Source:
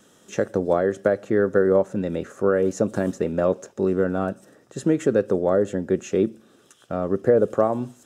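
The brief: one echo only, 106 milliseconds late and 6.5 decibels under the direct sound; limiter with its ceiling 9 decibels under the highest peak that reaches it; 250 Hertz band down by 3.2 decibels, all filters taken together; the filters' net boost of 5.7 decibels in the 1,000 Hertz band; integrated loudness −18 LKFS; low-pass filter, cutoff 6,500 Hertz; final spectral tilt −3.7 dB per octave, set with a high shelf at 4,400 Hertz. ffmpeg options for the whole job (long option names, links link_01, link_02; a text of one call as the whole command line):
ffmpeg -i in.wav -af "lowpass=6500,equalizer=frequency=250:width_type=o:gain=-5.5,equalizer=frequency=1000:width_type=o:gain=9,highshelf=frequency=4400:gain=-7.5,alimiter=limit=-12.5dB:level=0:latency=1,aecho=1:1:106:0.473,volume=6.5dB" out.wav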